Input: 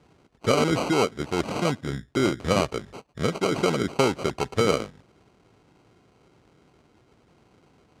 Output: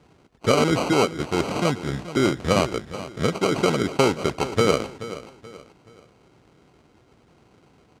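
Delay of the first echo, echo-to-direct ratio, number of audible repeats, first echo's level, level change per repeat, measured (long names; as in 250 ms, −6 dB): 429 ms, −14.0 dB, 3, −14.5 dB, −9.0 dB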